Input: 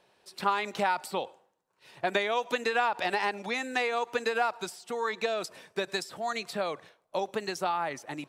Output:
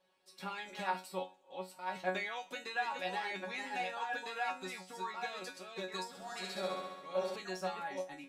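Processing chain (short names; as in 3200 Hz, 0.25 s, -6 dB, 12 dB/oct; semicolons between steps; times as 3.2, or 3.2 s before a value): reverse delay 0.689 s, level -4 dB; resonator bank F#3 fifth, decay 0.26 s; 6.08–7.36 flutter echo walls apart 11.6 m, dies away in 1.2 s; gain +4.5 dB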